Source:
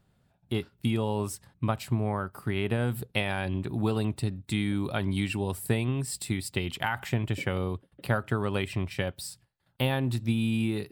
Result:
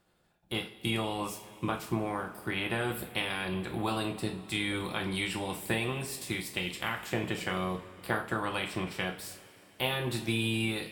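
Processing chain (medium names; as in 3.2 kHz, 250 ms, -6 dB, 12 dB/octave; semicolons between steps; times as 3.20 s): spectral peaks clipped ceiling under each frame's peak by 16 dB; two-slope reverb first 0.35 s, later 3.4 s, from -20 dB, DRR 1.5 dB; trim -6 dB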